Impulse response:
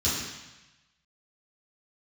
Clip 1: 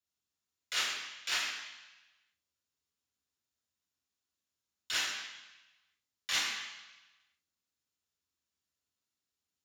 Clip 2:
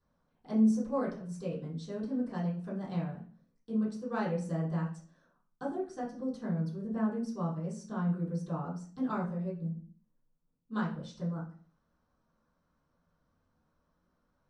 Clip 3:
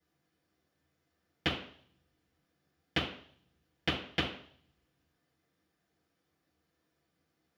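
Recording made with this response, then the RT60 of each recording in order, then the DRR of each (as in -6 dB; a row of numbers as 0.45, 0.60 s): 1; 1.0, 0.45, 0.60 s; -12.0, -11.0, -12.0 dB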